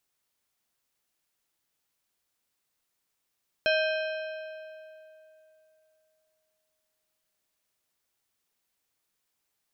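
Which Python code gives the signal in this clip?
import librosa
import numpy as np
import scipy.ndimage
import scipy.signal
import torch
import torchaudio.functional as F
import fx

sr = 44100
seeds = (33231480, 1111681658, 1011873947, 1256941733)

y = fx.strike_metal(sr, length_s=4.66, level_db=-23, body='plate', hz=628.0, decay_s=3.16, tilt_db=3, modes=6)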